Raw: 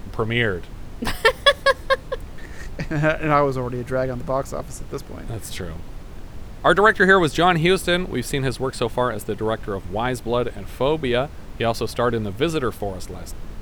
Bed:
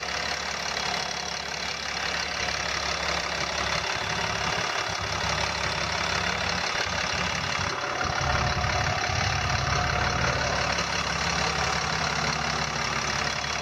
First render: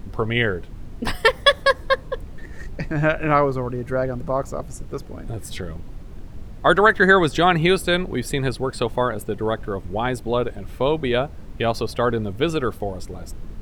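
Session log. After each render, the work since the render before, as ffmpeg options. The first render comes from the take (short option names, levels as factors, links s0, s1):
-af "afftdn=nr=7:nf=-38"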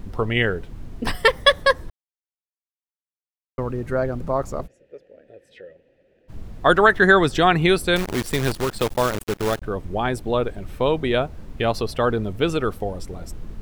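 -filter_complex "[0:a]asplit=3[s0][s1][s2];[s0]afade=t=out:st=4.66:d=0.02[s3];[s1]asplit=3[s4][s5][s6];[s4]bandpass=f=530:t=q:w=8,volume=1[s7];[s5]bandpass=f=1840:t=q:w=8,volume=0.501[s8];[s6]bandpass=f=2480:t=q:w=8,volume=0.355[s9];[s7][s8][s9]amix=inputs=3:normalize=0,afade=t=in:st=4.66:d=0.02,afade=t=out:st=6.28:d=0.02[s10];[s2]afade=t=in:st=6.28:d=0.02[s11];[s3][s10][s11]amix=inputs=3:normalize=0,asettb=1/sr,asplit=3[s12][s13][s14];[s12]atrim=end=7.964[s15];[s13]atrim=start=7.96:end=9.62,asetpts=PTS-STARTPTS,afade=t=in:d=0.004:c=qsin,afade=t=out:st=1.656:d=0.004:c=qsin,acrusher=bits=5:dc=4:mix=0:aa=0.000001[s16];[s14]atrim=start=9.616[s17];[s15][s16]acrossfade=d=0.004:c1=hsin:c2=qsin[s18];[s18][s17]acrossfade=d=0.004:c1=qsin:c2=hsin,asplit=3[s19][s20][s21];[s19]atrim=end=1.9,asetpts=PTS-STARTPTS,afade=t=out:st=1.896:d=0.004:c=hsin[s22];[s20]atrim=start=1.9:end=3.58,asetpts=PTS-STARTPTS,volume=0[s23];[s21]atrim=start=3.58,asetpts=PTS-STARTPTS,afade=t=in:d=0.004:c=hsin[s24];[s22][s23][s24]concat=n=3:v=0:a=1"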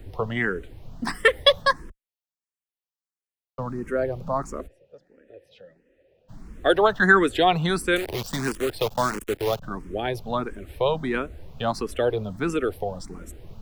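-filter_complex "[0:a]acrossover=split=160|510|3700[s0][s1][s2][s3];[s0]volume=50.1,asoftclip=hard,volume=0.02[s4];[s4][s1][s2][s3]amix=inputs=4:normalize=0,asplit=2[s5][s6];[s6]afreqshift=1.5[s7];[s5][s7]amix=inputs=2:normalize=1"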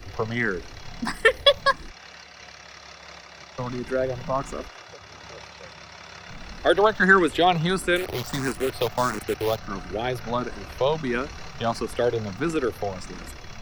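-filter_complex "[1:a]volume=0.158[s0];[0:a][s0]amix=inputs=2:normalize=0"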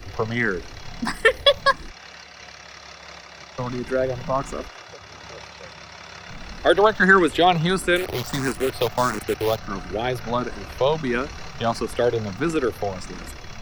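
-af "volume=1.33,alimiter=limit=0.708:level=0:latency=1"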